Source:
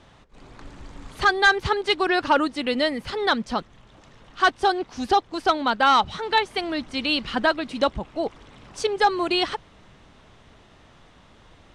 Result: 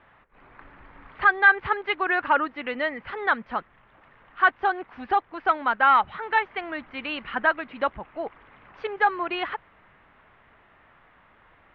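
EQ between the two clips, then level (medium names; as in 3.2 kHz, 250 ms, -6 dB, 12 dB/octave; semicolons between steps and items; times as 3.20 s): inverse Chebyshev low-pass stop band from 8.2 kHz, stop band 70 dB; tilt shelf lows -9 dB, about 820 Hz; -2.5 dB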